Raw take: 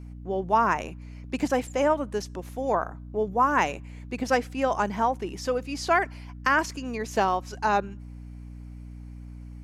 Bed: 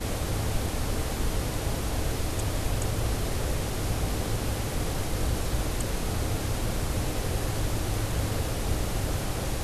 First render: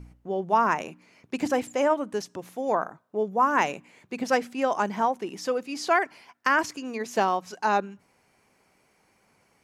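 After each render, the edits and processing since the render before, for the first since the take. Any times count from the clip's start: de-hum 60 Hz, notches 5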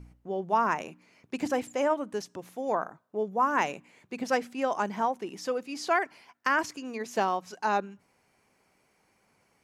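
gain -3.5 dB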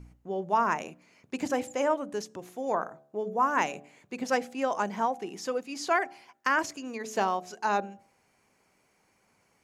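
bell 6800 Hz +4.5 dB 0.23 oct; de-hum 72.21 Hz, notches 11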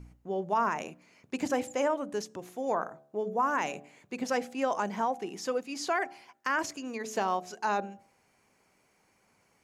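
limiter -18.5 dBFS, peak gain reduction 5.5 dB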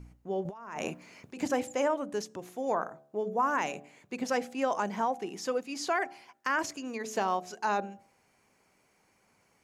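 0.45–1.37 negative-ratio compressor -40 dBFS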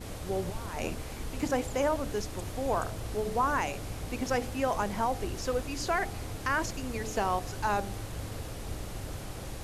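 add bed -10 dB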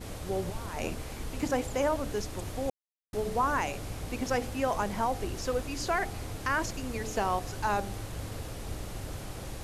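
2.7–3.13 mute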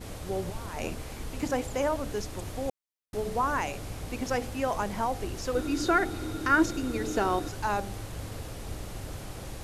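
5.55–7.49 small resonant body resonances 320/1400/3700 Hz, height 15 dB

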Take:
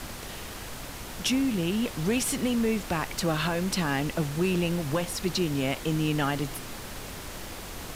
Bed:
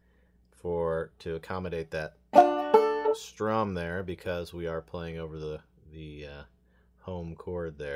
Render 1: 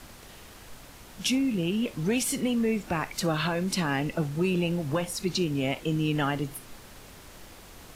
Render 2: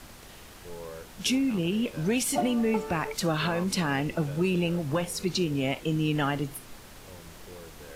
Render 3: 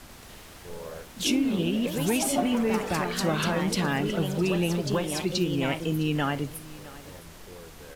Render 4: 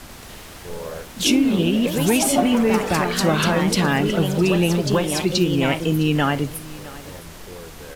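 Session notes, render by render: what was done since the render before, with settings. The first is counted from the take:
noise print and reduce 9 dB
add bed -12 dB
echoes that change speed 0.105 s, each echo +2 st, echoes 3, each echo -6 dB; echo 0.66 s -19.5 dB
gain +7.5 dB

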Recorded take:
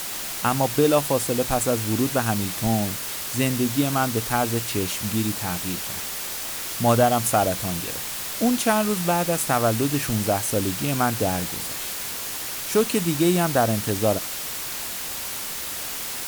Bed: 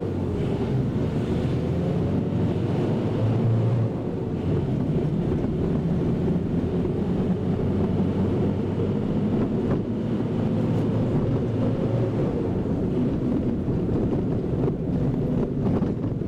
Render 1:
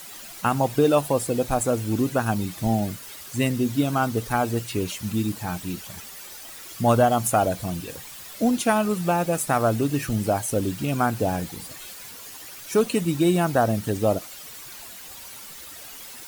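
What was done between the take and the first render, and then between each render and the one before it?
denoiser 12 dB, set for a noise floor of -31 dBFS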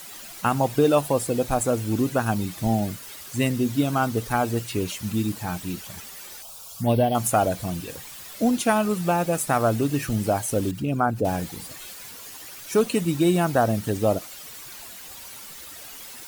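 6.42–7.15 envelope phaser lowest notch 290 Hz, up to 1300 Hz, full sweep at -15.5 dBFS; 10.71–11.25 formant sharpening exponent 1.5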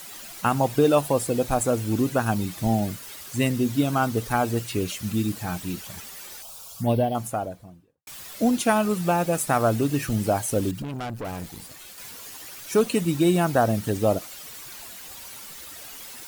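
4.75–5.52 notch 930 Hz, Q 6.6; 6.57–8.07 studio fade out; 10.82–11.98 tube stage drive 29 dB, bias 0.75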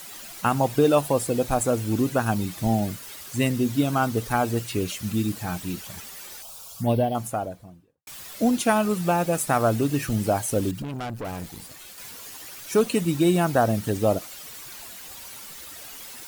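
nothing audible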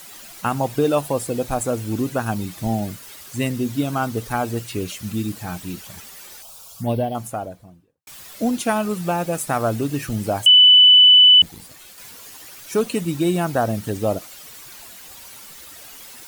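10.46–11.42 bleep 2990 Hz -6.5 dBFS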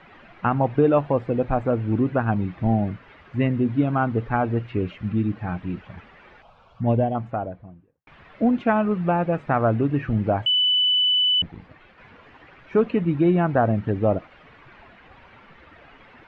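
LPF 2300 Hz 24 dB/oct; low shelf 210 Hz +4 dB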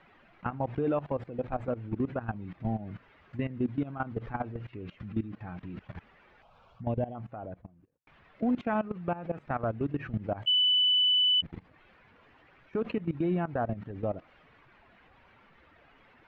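level quantiser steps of 20 dB; limiter -21 dBFS, peak gain reduction 11 dB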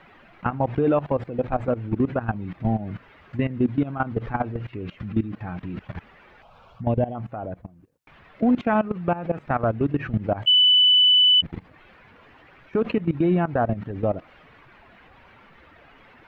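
gain +8.5 dB

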